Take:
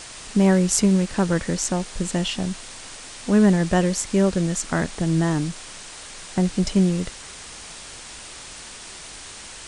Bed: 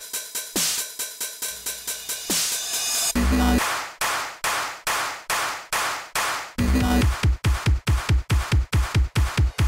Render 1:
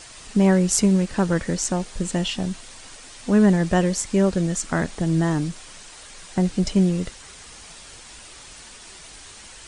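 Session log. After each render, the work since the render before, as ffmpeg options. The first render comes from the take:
ffmpeg -i in.wav -af "afftdn=noise_reduction=6:noise_floor=-40" out.wav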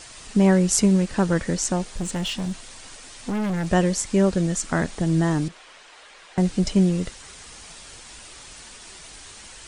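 ffmpeg -i in.wav -filter_complex "[0:a]asplit=3[link_01][link_02][link_03];[link_01]afade=type=out:start_time=1.9:duration=0.02[link_04];[link_02]asoftclip=type=hard:threshold=-23dB,afade=type=in:start_time=1.9:duration=0.02,afade=type=out:start_time=3.66:duration=0.02[link_05];[link_03]afade=type=in:start_time=3.66:duration=0.02[link_06];[link_04][link_05][link_06]amix=inputs=3:normalize=0,asettb=1/sr,asplit=3[link_07][link_08][link_09];[link_07]atrim=end=5.484[link_10];[link_08]atrim=start=5.48:end=6.38,asetpts=PTS-STARTPTS,afade=type=in:duration=0.004:curve=qsin,afade=type=out:start_time=0.896:duration=0.004:curve=qsin,acrossover=split=350 3800:gain=0.126 1 0.2[link_11][link_12][link_13];[link_11][link_12][link_13]amix=inputs=3:normalize=0[link_14];[link_09]atrim=start=6.376[link_15];[link_10][link_14]acrossfade=duration=0.004:curve1=hsin:curve2=qsin[link_16];[link_16][link_15]acrossfade=duration=0.004:curve1=qsin:curve2=hsin" out.wav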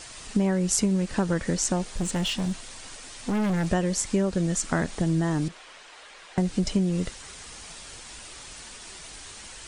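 ffmpeg -i in.wav -af "acompressor=threshold=-20dB:ratio=6" out.wav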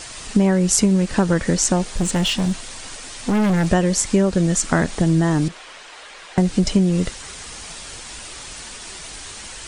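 ffmpeg -i in.wav -af "volume=7.5dB,alimiter=limit=-1dB:level=0:latency=1" out.wav

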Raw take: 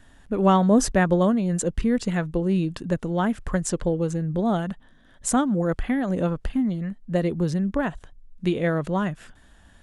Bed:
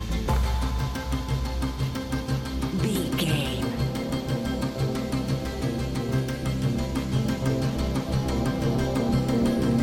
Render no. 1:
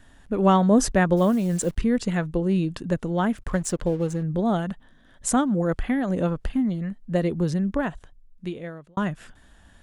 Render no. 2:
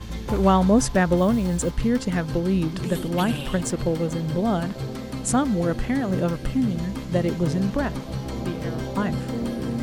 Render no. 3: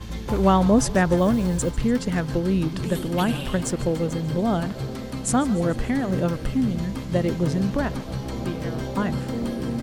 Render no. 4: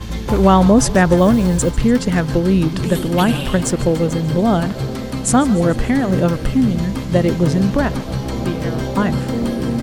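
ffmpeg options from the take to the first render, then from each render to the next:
ffmpeg -i in.wav -filter_complex "[0:a]asplit=3[link_01][link_02][link_03];[link_01]afade=type=out:start_time=1.16:duration=0.02[link_04];[link_02]acrusher=bits=8:dc=4:mix=0:aa=0.000001,afade=type=in:start_time=1.16:duration=0.02,afade=type=out:start_time=1.76:duration=0.02[link_05];[link_03]afade=type=in:start_time=1.76:duration=0.02[link_06];[link_04][link_05][link_06]amix=inputs=3:normalize=0,asettb=1/sr,asplit=3[link_07][link_08][link_09];[link_07]atrim=end=3.374[link_10];[link_08]atrim=start=3.37:end=4.23,asetpts=PTS-STARTPTS,afade=type=in:duration=0.004:curve=qsin,afade=type=out:start_time=0.856:duration=0.004:curve=qsin,aeval=exprs='sgn(val(0))*max(abs(val(0))-0.00531,0)':channel_layout=same[link_11];[link_09]atrim=start=4.226[link_12];[link_10][link_11]acrossfade=duration=0.004:curve1=hsin:curve2=qsin[link_13];[link_13][link_12]acrossfade=duration=0.004:curve1=qsin:curve2=hsin,asplit=2[link_14][link_15];[link_14]atrim=end=8.97,asetpts=PTS-STARTPTS,afade=type=out:start_time=7.71:duration=1.26[link_16];[link_15]atrim=start=8.97,asetpts=PTS-STARTPTS,afade=type=in:duration=0.004:curve=hsin[link_17];[link_16][link_17]concat=n=2:v=0:a=1" out.wav
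ffmpeg -i in.wav -i bed.wav -filter_complex "[1:a]volume=-4.5dB[link_01];[0:a][link_01]amix=inputs=2:normalize=0" out.wav
ffmpeg -i in.wav -filter_complex "[0:a]asplit=7[link_01][link_02][link_03][link_04][link_05][link_06][link_07];[link_02]adelay=146,afreqshift=-52,volume=-18dB[link_08];[link_03]adelay=292,afreqshift=-104,volume=-21.9dB[link_09];[link_04]adelay=438,afreqshift=-156,volume=-25.8dB[link_10];[link_05]adelay=584,afreqshift=-208,volume=-29.6dB[link_11];[link_06]adelay=730,afreqshift=-260,volume=-33.5dB[link_12];[link_07]adelay=876,afreqshift=-312,volume=-37.4dB[link_13];[link_01][link_08][link_09][link_10][link_11][link_12][link_13]amix=inputs=7:normalize=0" out.wav
ffmpeg -i in.wav -af "volume=7.5dB,alimiter=limit=-2dB:level=0:latency=1" out.wav

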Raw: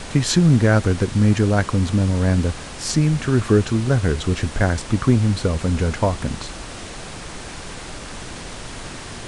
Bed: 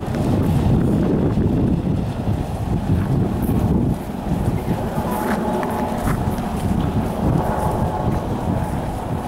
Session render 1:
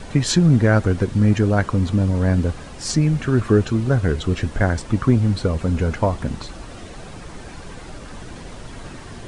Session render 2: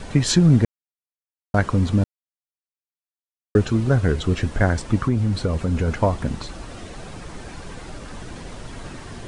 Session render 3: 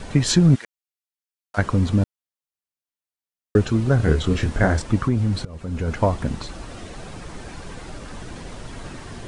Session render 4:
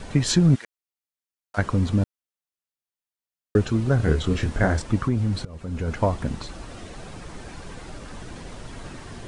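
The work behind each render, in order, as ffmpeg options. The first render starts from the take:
ffmpeg -i in.wav -af "afftdn=noise_reduction=9:noise_floor=-34" out.wav
ffmpeg -i in.wav -filter_complex "[0:a]asettb=1/sr,asplit=3[link_01][link_02][link_03];[link_01]atrim=end=5.054[link_04];[link_02]atrim=start=5.05:end=5.88,asetpts=PTS-STARTPTS,afade=type=in:duration=0.004:curve=qsin,afade=type=out:start_time=0.826:duration=0.004:curve=qsin,acompressor=threshold=-17dB:ratio=2.5:attack=3.2:release=140:knee=1:detection=peak[link_05];[link_03]atrim=start=5.876[link_06];[link_04][link_05]acrossfade=duration=0.004:curve1=hsin:curve2=qsin[link_07];[link_07][link_06]acrossfade=duration=0.004:curve1=qsin:curve2=hsin,asplit=5[link_08][link_09][link_10][link_11][link_12];[link_08]atrim=end=0.65,asetpts=PTS-STARTPTS,afade=type=out:start_time=0.646:duration=0.004:curve=hsin[link_13];[link_09]atrim=start=0.65:end=1.54,asetpts=PTS-STARTPTS,volume=0[link_14];[link_10]atrim=start=1.54:end=2.04,asetpts=PTS-STARTPTS,afade=type=in:duration=0.004:curve=hsin,afade=type=out:start_time=0.496:duration=0.004:curve=hsin[link_15];[link_11]atrim=start=2.04:end=3.55,asetpts=PTS-STARTPTS,volume=0[link_16];[link_12]atrim=start=3.55,asetpts=PTS-STARTPTS,afade=type=in:duration=0.004:curve=hsin[link_17];[link_13][link_14][link_15][link_16][link_17]concat=n=5:v=0:a=1" out.wav
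ffmpeg -i in.wav -filter_complex "[0:a]asplit=3[link_01][link_02][link_03];[link_01]afade=type=out:start_time=0.54:duration=0.02[link_04];[link_02]highpass=1500,afade=type=in:start_time=0.54:duration=0.02,afade=type=out:start_time=1.57:duration=0.02[link_05];[link_03]afade=type=in:start_time=1.57:duration=0.02[link_06];[link_04][link_05][link_06]amix=inputs=3:normalize=0,asettb=1/sr,asplit=3[link_07][link_08][link_09];[link_07]atrim=end=3.974[link_10];[link_08]atrim=start=3.97:end=4.82,asetpts=PTS-STARTPTS,afade=type=in:duration=0.004:curve=qsin,afade=type=out:start_time=0.846:duration=0.004:curve=qsin,asplit=2[link_11][link_12];[link_12]adelay=26,volume=-4dB[link_13];[link_11][link_13]amix=inputs=2:normalize=0,atrim=end_sample=37485[link_14];[link_09]atrim=start=4.816[link_15];[link_10][link_14]acrossfade=duration=0.004:curve1=hsin:curve2=qsin[link_16];[link_16][link_15]acrossfade=duration=0.004:curve1=qsin:curve2=hsin,asplit=2[link_17][link_18];[link_17]atrim=end=5.45,asetpts=PTS-STARTPTS,afade=type=out:start_time=5.446:duration=0.004:curve=hsin:silence=0.0794328[link_19];[link_18]atrim=start=5.45,asetpts=PTS-STARTPTS,afade=type=in:duration=0.58:silence=0.0794328[link_20];[link_19][link_20]concat=n=2:v=0:a=1" out.wav
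ffmpeg -i in.wav -af "volume=-2.5dB" out.wav

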